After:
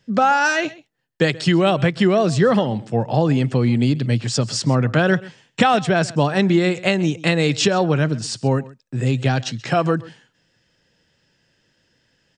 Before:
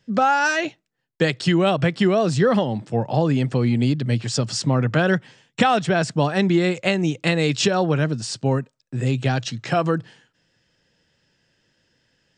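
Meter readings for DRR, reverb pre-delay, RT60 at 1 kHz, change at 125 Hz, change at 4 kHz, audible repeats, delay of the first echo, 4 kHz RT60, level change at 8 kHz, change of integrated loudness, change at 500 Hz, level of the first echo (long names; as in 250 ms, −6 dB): no reverb audible, no reverb audible, no reverb audible, +2.0 dB, +2.0 dB, 1, 131 ms, no reverb audible, +2.0 dB, +2.0 dB, +2.0 dB, −20.5 dB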